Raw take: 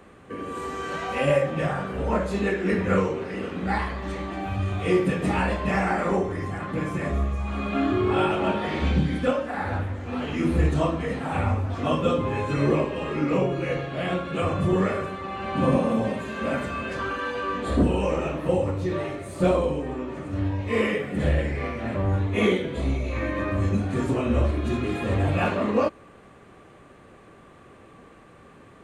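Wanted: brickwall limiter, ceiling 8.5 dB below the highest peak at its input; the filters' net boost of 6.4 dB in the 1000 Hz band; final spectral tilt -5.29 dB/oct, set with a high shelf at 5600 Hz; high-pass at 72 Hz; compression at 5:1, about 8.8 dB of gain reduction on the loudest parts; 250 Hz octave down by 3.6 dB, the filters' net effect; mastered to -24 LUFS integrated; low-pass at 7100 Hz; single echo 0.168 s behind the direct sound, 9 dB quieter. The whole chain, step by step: HPF 72 Hz; LPF 7100 Hz; bell 250 Hz -5.5 dB; bell 1000 Hz +8.5 dB; high shelf 5600 Hz -3 dB; compressor 5:1, threshold -26 dBFS; limiter -24 dBFS; echo 0.168 s -9 dB; gain +8 dB

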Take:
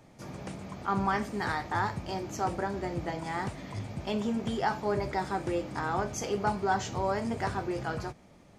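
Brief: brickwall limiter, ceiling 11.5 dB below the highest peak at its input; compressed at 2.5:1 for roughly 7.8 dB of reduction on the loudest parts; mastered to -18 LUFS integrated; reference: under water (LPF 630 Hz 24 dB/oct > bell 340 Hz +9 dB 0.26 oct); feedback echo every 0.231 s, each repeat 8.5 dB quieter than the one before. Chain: compressor 2.5:1, threshold -36 dBFS; limiter -35 dBFS; LPF 630 Hz 24 dB/oct; bell 340 Hz +9 dB 0.26 oct; feedback echo 0.231 s, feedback 38%, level -8.5 dB; gain +24.5 dB

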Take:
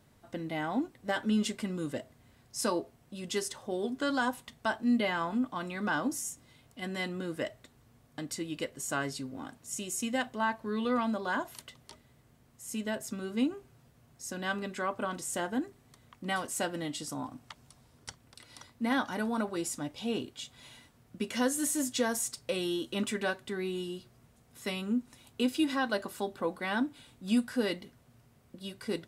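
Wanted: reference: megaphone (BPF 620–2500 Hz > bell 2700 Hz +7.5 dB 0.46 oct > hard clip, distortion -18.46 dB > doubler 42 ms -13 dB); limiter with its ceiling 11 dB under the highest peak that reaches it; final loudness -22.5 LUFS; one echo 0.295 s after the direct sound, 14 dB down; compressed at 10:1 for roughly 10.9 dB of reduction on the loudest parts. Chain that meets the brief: compressor 10:1, threshold -34 dBFS; limiter -32.5 dBFS; BPF 620–2500 Hz; bell 2700 Hz +7.5 dB 0.46 oct; echo 0.295 s -14 dB; hard clip -38.5 dBFS; doubler 42 ms -13 dB; gain +26 dB

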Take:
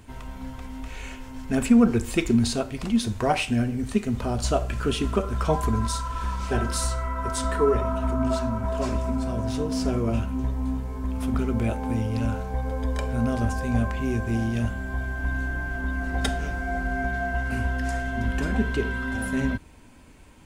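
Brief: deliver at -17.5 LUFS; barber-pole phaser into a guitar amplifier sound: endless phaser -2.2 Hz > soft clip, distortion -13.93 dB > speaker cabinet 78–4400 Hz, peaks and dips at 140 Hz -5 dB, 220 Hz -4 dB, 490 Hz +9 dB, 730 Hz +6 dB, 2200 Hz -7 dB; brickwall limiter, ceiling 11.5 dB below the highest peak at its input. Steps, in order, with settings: limiter -19 dBFS; endless phaser -2.2 Hz; soft clip -28 dBFS; speaker cabinet 78–4400 Hz, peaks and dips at 140 Hz -5 dB, 220 Hz -4 dB, 490 Hz +9 dB, 730 Hz +6 dB, 2200 Hz -7 dB; gain +17.5 dB

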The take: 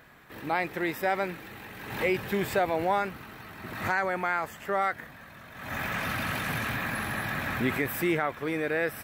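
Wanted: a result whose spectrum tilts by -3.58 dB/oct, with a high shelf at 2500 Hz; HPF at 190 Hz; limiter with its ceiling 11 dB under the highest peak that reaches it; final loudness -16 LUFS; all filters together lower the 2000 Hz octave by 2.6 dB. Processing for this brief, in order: HPF 190 Hz; bell 2000 Hz -5 dB; high shelf 2500 Hz +4 dB; gain +19.5 dB; limiter -5.5 dBFS

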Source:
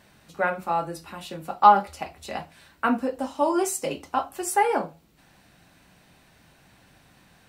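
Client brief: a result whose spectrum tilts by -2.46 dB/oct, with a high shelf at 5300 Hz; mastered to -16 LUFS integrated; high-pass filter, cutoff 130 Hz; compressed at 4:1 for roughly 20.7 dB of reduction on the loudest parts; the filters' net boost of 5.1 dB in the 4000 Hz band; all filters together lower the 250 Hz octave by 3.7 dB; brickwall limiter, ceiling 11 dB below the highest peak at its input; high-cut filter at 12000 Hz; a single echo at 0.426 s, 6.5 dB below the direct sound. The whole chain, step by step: HPF 130 Hz; LPF 12000 Hz; bell 250 Hz -4.5 dB; bell 4000 Hz +4.5 dB; high shelf 5300 Hz +6 dB; compressor 4:1, threshold -35 dBFS; limiter -28.5 dBFS; echo 0.426 s -6.5 dB; gain +23.5 dB

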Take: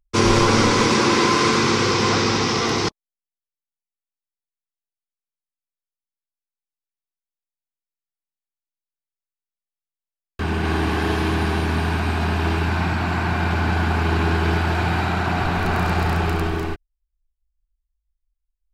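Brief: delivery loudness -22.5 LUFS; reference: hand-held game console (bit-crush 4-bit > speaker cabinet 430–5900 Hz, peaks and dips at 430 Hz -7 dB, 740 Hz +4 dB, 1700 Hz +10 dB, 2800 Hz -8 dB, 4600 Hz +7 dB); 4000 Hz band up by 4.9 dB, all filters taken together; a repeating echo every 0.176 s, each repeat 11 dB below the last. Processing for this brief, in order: bell 4000 Hz +3.5 dB; feedback echo 0.176 s, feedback 28%, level -11 dB; bit-crush 4-bit; speaker cabinet 430–5900 Hz, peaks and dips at 430 Hz -7 dB, 740 Hz +4 dB, 1700 Hz +10 dB, 2800 Hz -8 dB, 4600 Hz +7 dB; gain -4.5 dB

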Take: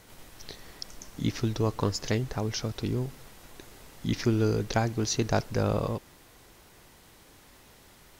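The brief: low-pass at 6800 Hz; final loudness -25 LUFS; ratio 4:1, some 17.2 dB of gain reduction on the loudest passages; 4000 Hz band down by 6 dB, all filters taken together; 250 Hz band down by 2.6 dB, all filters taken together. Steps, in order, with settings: LPF 6800 Hz; bell 250 Hz -3.5 dB; bell 4000 Hz -7 dB; compressor 4:1, threshold -44 dBFS; gain +23 dB

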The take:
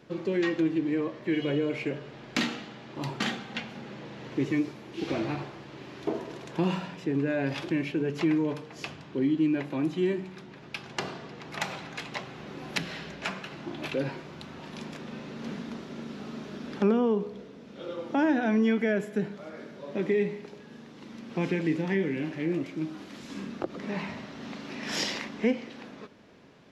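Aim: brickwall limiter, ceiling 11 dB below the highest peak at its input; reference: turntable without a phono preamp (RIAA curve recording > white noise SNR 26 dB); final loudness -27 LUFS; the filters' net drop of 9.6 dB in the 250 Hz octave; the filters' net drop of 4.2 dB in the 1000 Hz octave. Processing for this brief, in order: bell 250 Hz -4.5 dB; bell 1000 Hz -5 dB; limiter -23.5 dBFS; RIAA curve recording; white noise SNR 26 dB; gain +9.5 dB

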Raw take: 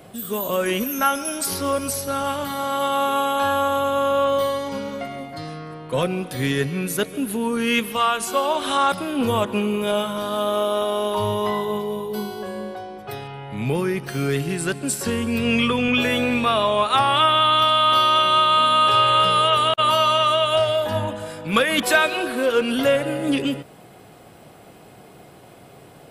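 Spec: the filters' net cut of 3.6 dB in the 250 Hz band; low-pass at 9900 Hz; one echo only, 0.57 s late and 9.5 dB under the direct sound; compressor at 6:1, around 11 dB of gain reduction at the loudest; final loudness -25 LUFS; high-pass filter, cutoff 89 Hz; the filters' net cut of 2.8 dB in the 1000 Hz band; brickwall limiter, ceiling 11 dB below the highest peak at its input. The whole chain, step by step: HPF 89 Hz; LPF 9900 Hz; bell 250 Hz -4 dB; bell 1000 Hz -3.5 dB; compressor 6:1, threshold -27 dBFS; limiter -26.5 dBFS; echo 0.57 s -9.5 dB; gain +9 dB

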